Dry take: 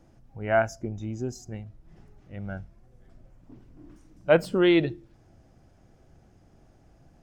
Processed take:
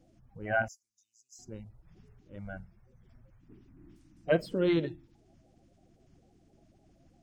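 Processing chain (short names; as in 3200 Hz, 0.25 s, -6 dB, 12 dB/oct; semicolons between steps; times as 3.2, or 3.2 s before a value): bin magnitudes rounded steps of 30 dB; 0.68–1.39 inverse Chebyshev high-pass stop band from 1700 Hz, stop band 60 dB; gain -6 dB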